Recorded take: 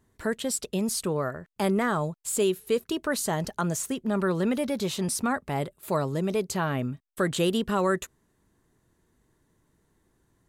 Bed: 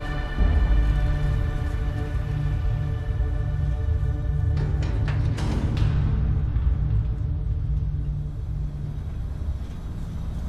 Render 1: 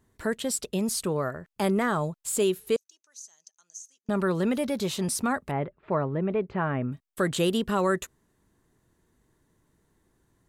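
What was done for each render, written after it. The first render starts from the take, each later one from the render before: 2.76–4.09 band-pass 6200 Hz, Q 14; 5.51–6.92 LPF 2300 Hz 24 dB/oct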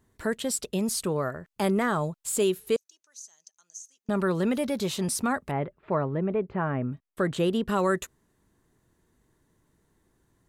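6.2–7.68 high shelf 3400 Hz -11.5 dB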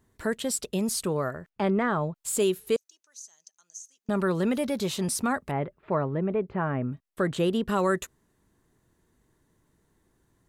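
1.49–2.16 LPF 2900 Hz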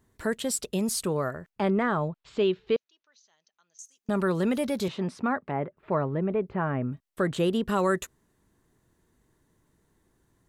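2.08–3.79 inverse Chebyshev low-pass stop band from 9100 Hz, stop band 50 dB; 4.88–5.77 BPF 140–2300 Hz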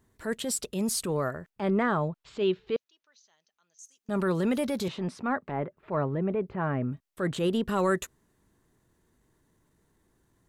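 transient shaper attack -7 dB, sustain 0 dB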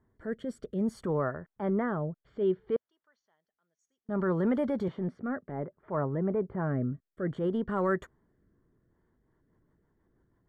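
rotary speaker horn 0.6 Hz, later 6.3 Hz, at 8.71; polynomial smoothing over 41 samples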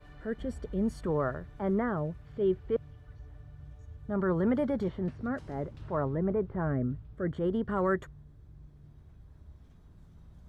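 add bed -23.5 dB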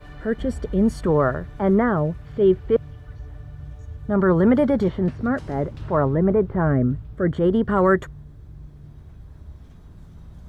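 gain +11 dB

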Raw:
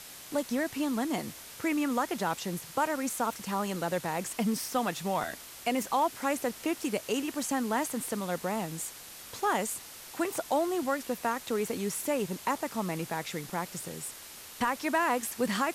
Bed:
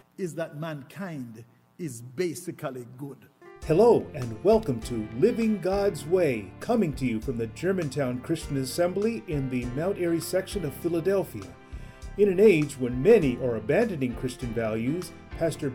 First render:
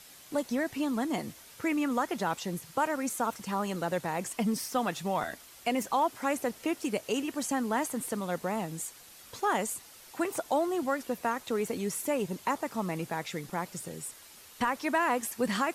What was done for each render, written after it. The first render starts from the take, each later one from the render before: denoiser 7 dB, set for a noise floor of -47 dBFS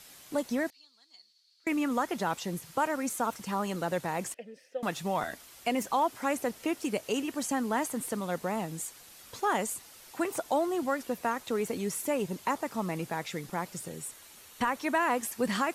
0.7–1.67 band-pass 4400 Hz, Q 13; 4.34–4.83 vowel filter e; 13.88–15.1 notch 5000 Hz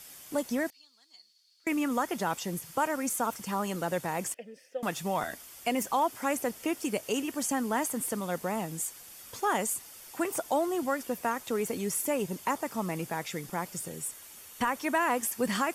high shelf 7600 Hz +7 dB; notch 4000 Hz, Q 10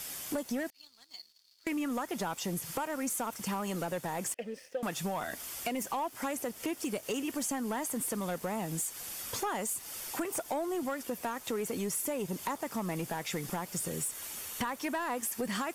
compressor 6:1, threshold -38 dBFS, peak gain reduction 14.5 dB; sample leveller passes 2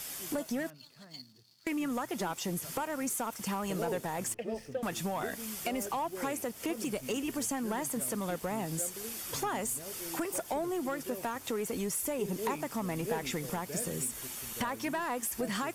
add bed -19.5 dB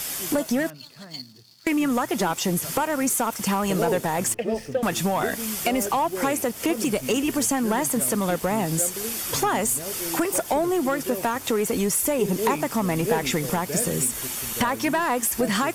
gain +11 dB

